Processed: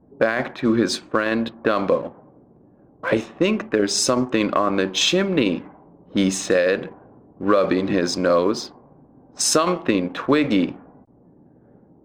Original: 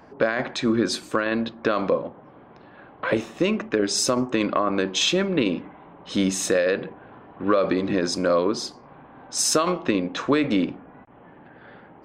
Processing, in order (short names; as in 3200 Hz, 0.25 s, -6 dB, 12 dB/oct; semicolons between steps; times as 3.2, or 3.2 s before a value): low-pass opened by the level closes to 300 Hz, open at -19 dBFS; in parallel at -7 dB: crossover distortion -35.5 dBFS